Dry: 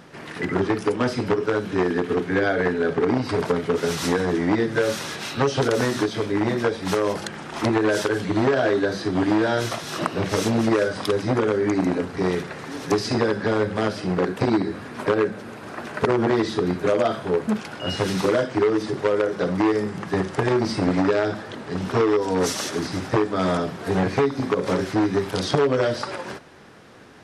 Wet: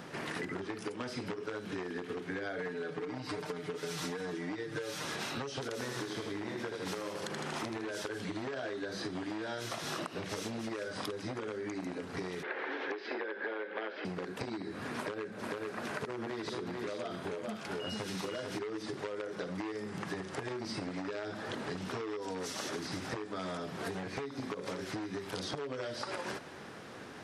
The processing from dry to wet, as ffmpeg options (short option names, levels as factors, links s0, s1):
-filter_complex "[0:a]asettb=1/sr,asplit=3[s0][s1][s2];[s0]atrim=end=2.584[s3];[s1]atrim=start=2.58:end=5.05,asetpts=PTS-STARTPTS,afade=t=in:d=0.004:c=qsin,afade=t=out:st=2.466:d=0.004:c=qsin,aecho=1:1:6.6:0.73,atrim=end_sample=108927[s4];[s2]atrim=start=5.046[s5];[s3][s4]acrossfade=d=0.004:c1=hsin:c2=qsin[s6];[s6][s5]acrossfade=d=0.004:c1=qsin:c2=hsin,asettb=1/sr,asplit=3[s7][s8][s9];[s7]atrim=end=5.754[s10];[s8]atrim=start=5.75:end=7.91,asetpts=PTS-STARTPTS,afade=t=in:d=0.004:c=qsin,afade=t=out:st=2.156:d=0.004:c=qsin,aecho=1:1:79|158|237|316|395|474|553:0.501|0.281|0.157|0.088|0.0493|0.0276|0.0155,atrim=end_sample=95256[s11];[s9]atrim=start=7.906[s12];[s10][s11]acrossfade=d=0.004:c1=hsin:c2=qsin[s13];[s13][s12]acrossfade=d=0.004:c1=qsin:c2=hsin,asettb=1/sr,asplit=3[s14][s15][s16];[s14]atrim=end=12.434[s17];[s15]atrim=start=12.43:end=14.05,asetpts=PTS-STARTPTS,afade=t=in:d=0.004:c=qsin,afade=t=out:st=1.616:d=0.004:c=qsin,highpass=f=310:w=0.5412,highpass=f=310:w=1.3066,equalizer=f=360:t=q:w=4:g=5,equalizer=f=510:t=q:w=4:g=5,equalizer=f=860:t=q:w=4:g=4,equalizer=f=1600:t=q:w=4:g=9,equalizer=f=2200:t=q:w=4:g=6,equalizer=f=3200:t=q:w=4:g=3,lowpass=f=3500:w=0.5412,lowpass=f=3500:w=1.3066[s18];[s16]atrim=start=14.046[s19];[s17][s18]acrossfade=d=0.004:c1=hsin:c2=qsin[s20];[s20][s19]acrossfade=d=0.004:c1=qsin:c2=hsin,asettb=1/sr,asplit=3[s21][s22][s23];[s21]atrim=end=14.974[s24];[s22]atrim=start=14.97:end=18.59,asetpts=PTS-STARTPTS,afade=t=in:d=0.004:c=qsin,afade=t=out:st=3.616:d=0.004:c=qsin,aecho=1:1:441:0.531,atrim=end_sample=159642[s25];[s23]atrim=start=18.586[s26];[s24][s25]acrossfade=d=0.004:c1=hsin:c2=qsin[s27];[s27][s26]acrossfade=d=0.004:c1=qsin:c2=hsin,acompressor=threshold=0.0282:ratio=6,lowshelf=f=69:g=-9.5,acrossover=split=1700|4900[s28][s29][s30];[s28]acompressor=threshold=0.0141:ratio=4[s31];[s29]acompressor=threshold=0.00631:ratio=4[s32];[s30]acompressor=threshold=0.00447:ratio=4[s33];[s31][s32][s33]amix=inputs=3:normalize=0"